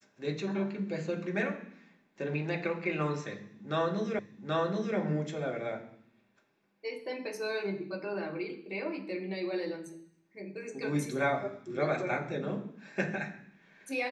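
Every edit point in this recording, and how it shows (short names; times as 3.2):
4.19 repeat of the last 0.78 s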